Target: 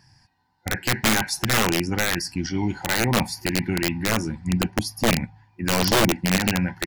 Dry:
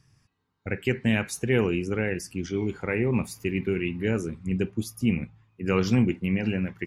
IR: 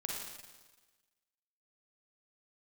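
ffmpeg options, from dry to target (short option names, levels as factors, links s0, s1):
-af "superequalizer=7b=0.355:9b=3.55:10b=0.562:11b=2:14b=2.51,asetrate=42845,aresample=44100,atempo=1.0293,aeval=exprs='(mod(7.08*val(0)+1,2)-1)/7.08':c=same,volume=1.68"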